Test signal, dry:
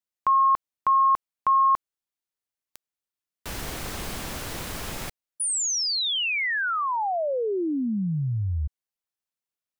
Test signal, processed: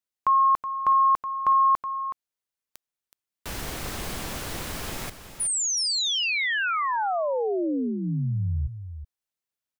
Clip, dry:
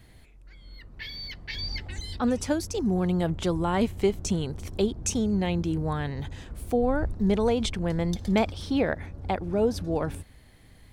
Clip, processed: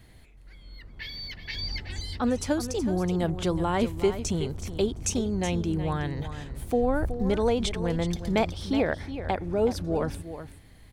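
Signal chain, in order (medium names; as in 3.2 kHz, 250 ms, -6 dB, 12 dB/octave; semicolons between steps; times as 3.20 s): dynamic bell 200 Hz, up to -5 dB, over -40 dBFS, Q 5.3; delay 372 ms -11 dB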